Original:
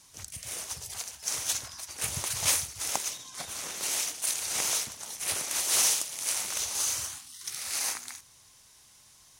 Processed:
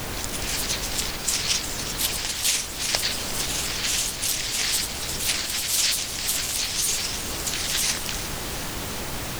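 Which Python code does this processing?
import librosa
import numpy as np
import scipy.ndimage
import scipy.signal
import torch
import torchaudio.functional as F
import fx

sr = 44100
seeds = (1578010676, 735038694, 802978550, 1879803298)

y = fx.weighting(x, sr, curve='D')
y = fx.granulator(y, sr, seeds[0], grain_ms=100.0, per_s=20.0, spray_ms=17.0, spread_st=7)
y = fx.dmg_noise_colour(y, sr, seeds[1], colour='pink', level_db=-35.0)
y = fx.rider(y, sr, range_db=4, speed_s=0.5)
y = fx.echo_thinned(y, sr, ms=357, feedback_pct=77, hz=420.0, wet_db=-14.0)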